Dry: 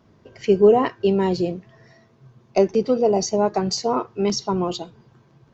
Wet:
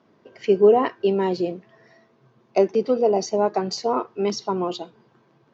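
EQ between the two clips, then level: HPF 240 Hz 12 dB/oct; air absorption 100 m; 0.0 dB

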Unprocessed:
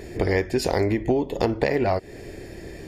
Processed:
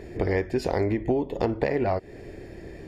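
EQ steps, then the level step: high shelf 3900 Hz -11.5 dB; -2.5 dB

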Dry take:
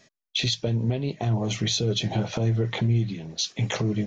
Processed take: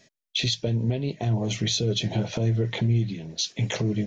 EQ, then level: bell 1200 Hz -7.5 dB 0.51 oct; notch 790 Hz, Q 12; 0.0 dB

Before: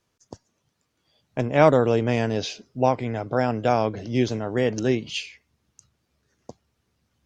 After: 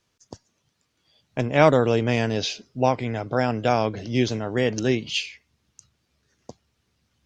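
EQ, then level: low shelf 390 Hz +3.5 dB; bell 3800 Hz +7 dB 2.8 oct; -2.5 dB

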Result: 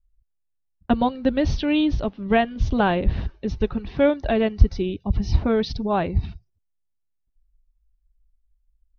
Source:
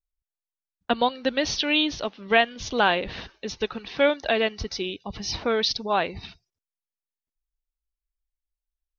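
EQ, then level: tilt -4 dB/oct; bell 65 Hz +7 dB 2.7 oct; notch 480 Hz, Q 12; -1.5 dB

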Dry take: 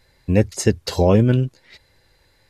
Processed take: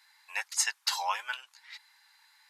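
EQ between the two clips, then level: Chebyshev high-pass 860 Hz, order 5; 0.0 dB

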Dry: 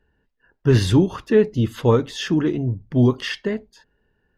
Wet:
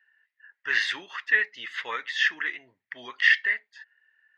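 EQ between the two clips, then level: resonant high-pass 1900 Hz, resonance Q 7; air absorption 140 m; 0.0 dB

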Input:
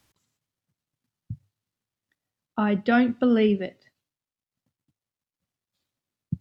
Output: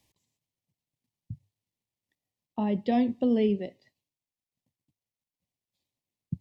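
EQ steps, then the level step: dynamic EQ 2200 Hz, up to -6 dB, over -43 dBFS, Q 1.1; Butterworth band-stop 1400 Hz, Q 1.5; bell 1400 Hz +8.5 dB 0.33 oct; -4.0 dB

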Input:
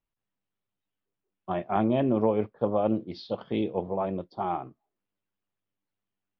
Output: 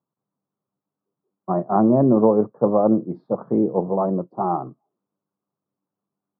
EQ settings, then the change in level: elliptic band-pass 140–1200 Hz, stop band 40 dB; low shelf 180 Hz +7.5 dB; +7.5 dB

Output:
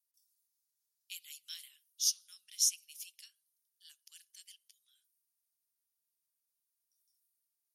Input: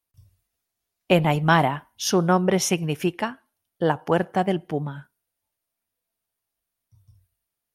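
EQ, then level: inverse Chebyshev high-pass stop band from 800 Hz, stop band 80 dB; -2.0 dB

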